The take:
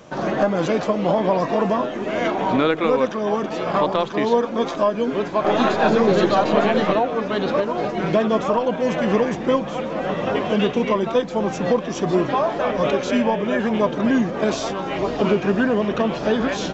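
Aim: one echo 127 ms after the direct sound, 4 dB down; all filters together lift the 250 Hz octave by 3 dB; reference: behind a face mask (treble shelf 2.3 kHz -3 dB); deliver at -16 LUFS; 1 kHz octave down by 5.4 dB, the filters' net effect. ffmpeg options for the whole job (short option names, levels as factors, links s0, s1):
-af "equalizer=f=250:t=o:g=4,equalizer=f=1000:t=o:g=-7,highshelf=f=2300:g=-3,aecho=1:1:127:0.631,volume=1.41"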